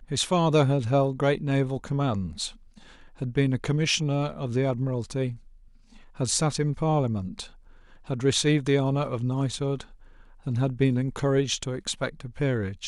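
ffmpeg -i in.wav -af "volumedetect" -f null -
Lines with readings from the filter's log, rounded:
mean_volume: -26.4 dB
max_volume: -10.4 dB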